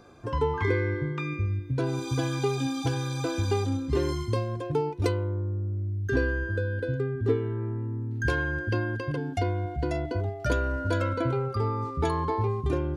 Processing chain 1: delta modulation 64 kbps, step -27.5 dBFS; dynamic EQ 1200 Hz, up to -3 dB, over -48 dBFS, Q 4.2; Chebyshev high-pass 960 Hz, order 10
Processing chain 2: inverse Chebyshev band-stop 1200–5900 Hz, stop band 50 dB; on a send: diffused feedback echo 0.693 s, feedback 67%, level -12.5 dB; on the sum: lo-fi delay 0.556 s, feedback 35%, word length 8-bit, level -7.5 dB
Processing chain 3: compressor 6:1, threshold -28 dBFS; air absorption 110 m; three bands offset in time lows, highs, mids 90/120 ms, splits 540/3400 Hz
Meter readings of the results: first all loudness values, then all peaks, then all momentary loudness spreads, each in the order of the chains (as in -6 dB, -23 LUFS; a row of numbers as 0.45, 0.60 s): -35.0, -29.0, -33.5 LUFS; -21.0, -12.0, -20.5 dBFS; 6, 3, 2 LU